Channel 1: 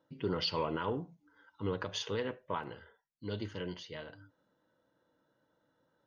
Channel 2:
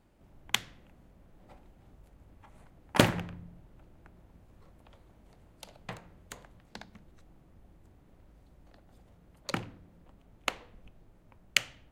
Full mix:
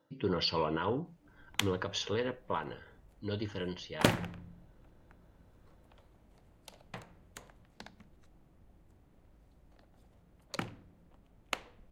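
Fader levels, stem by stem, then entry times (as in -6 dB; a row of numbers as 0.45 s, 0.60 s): +2.0 dB, -4.0 dB; 0.00 s, 1.05 s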